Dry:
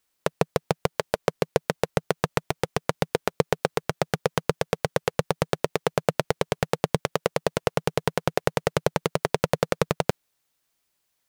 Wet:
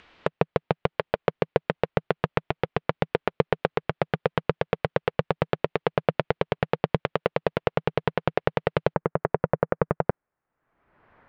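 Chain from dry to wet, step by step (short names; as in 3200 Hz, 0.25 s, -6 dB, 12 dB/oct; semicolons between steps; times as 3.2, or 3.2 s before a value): LPF 3200 Hz 24 dB/oct, from 8.94 s 1700 Hz; upward compressor, threshold -36 dBFS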